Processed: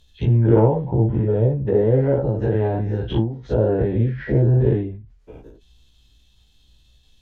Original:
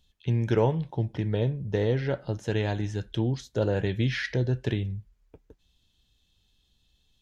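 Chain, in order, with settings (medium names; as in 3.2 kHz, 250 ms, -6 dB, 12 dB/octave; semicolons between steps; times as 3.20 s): every event in the spectrogram widened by 120 ms; low-pass that closes with the level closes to 820 Hz, closed at -21.5 dBFS; chorus voices 6, 0.42 Hz, delay 16 ms, depth 2.1 ms; endings held to a fixed fall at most 100 dB/s; trim +8 dB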